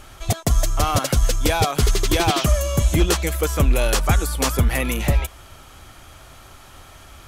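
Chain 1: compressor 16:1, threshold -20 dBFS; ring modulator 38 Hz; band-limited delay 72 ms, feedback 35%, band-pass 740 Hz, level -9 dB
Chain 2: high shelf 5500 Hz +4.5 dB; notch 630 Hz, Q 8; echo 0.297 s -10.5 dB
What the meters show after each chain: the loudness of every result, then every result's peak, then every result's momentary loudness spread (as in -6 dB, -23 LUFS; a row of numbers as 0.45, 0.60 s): -29.0, -19.5 LUFS; -11.5, -5.0 dBFS; 19, 5 LU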